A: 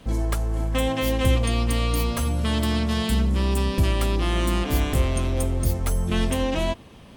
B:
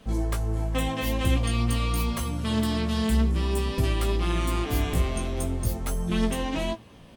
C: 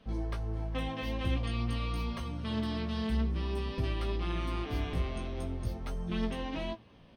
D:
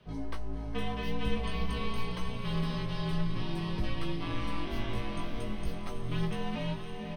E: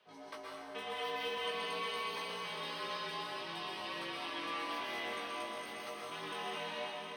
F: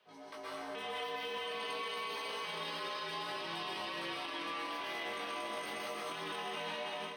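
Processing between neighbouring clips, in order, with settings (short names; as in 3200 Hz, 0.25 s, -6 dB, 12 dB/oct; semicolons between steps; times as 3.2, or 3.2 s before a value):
flange 0.48 Hz, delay 4.4 ms, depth 9.8 ms, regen +53%; doubler 18 ms -6 dB
polynomial smoothing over 15 samples; gain -8 dB
frequency shift -54 Hz; doubler 19 ms -11.5 dB; on a send: diffused feedback echo 0.551 s, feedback 47%, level -5.5 dB
HPF 600 Hz 12 dB/oct; plate-style reverb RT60 1.6 s, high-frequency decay 0.85×, pre-delay 0.105 s, DRR -3.5 dB; gain -3.5 dB
limiter -37 dBFS, peak gain reduction 10 dB; notches 60/120/180/240 Hz; AGC gain up to 6.5 dB; gain -1 dB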